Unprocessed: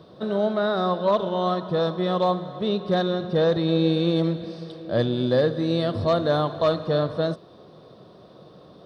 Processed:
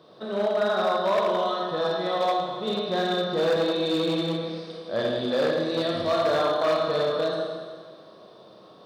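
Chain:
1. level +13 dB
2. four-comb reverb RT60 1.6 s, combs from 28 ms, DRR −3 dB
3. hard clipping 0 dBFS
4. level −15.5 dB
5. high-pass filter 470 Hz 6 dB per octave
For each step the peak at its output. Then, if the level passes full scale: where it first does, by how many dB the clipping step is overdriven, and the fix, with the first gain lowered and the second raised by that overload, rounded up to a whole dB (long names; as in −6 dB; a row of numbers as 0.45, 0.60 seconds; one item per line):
+2.0, +9.5, 0.0, −15.5, −12.5 dBFS
step 1, 9.5 dB
step 1 +3 dB, step 4 −5.5 dB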